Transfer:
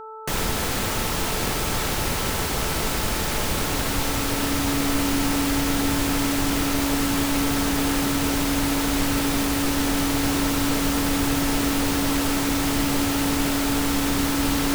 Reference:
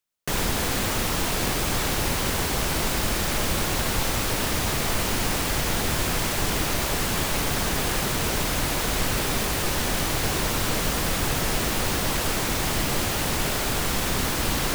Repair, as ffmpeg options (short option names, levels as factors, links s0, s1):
-af "bandreject=f=439.4:t=h:w=4,bandreject=f=878.8:t=h:w=4,bandreject=f=1318.2:t=h:w=4,bandreject=f=280:w=30"